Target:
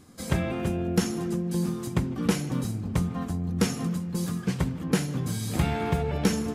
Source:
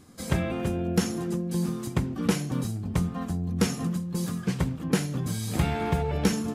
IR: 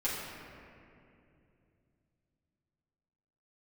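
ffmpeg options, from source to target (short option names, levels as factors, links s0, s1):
-filter_complex "[0:a]asplit=2[s0][s1];[1:a]atrim=start_sample=2205,lowpass=5200,adelay=148[s2];[s1][s2]afir=irnorm=-1:irlink=0,volume=0.0794[s3];[s0][s3]amix=inputs=2:normalize=0"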